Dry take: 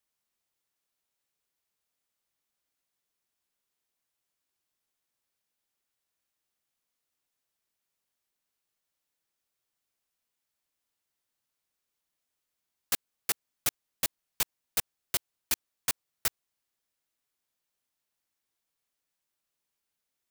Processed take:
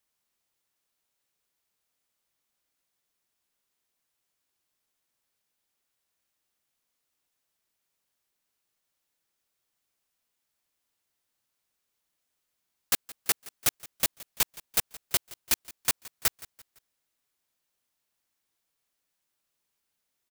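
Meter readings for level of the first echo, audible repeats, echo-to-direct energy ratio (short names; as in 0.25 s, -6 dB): -20.0 dB, 2, -19.0 dB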